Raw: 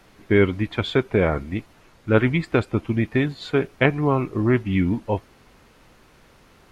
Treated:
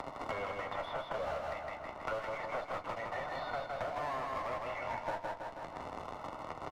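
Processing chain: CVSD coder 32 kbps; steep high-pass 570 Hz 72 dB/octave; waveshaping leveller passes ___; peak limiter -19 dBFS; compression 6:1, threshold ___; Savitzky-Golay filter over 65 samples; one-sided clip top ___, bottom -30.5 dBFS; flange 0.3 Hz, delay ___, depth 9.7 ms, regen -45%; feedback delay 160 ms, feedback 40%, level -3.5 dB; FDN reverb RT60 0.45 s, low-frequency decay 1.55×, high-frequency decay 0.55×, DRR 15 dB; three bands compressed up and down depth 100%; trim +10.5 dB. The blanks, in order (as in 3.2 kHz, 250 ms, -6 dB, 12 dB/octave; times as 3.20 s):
5, -39 dBFS, -47.5 dBFS, 7.2 ms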